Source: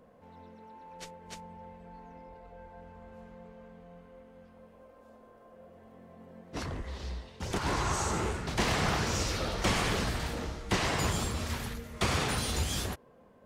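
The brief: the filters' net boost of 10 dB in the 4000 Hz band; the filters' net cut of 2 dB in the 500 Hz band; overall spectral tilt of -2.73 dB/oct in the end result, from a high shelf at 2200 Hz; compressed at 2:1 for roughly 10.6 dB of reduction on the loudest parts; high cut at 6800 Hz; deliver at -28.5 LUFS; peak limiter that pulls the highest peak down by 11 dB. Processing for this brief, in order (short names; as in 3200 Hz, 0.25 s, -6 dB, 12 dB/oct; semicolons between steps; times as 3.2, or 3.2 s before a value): LPF 6800 Hz; bell 500 Hz -3 dB; high shelf 2200 Hz +5.5 dB; bell 4000 Hz +8 dB; compressor 2:1, threshold -41 dBFS; gain +11 dB; limiter -18.5 dBFS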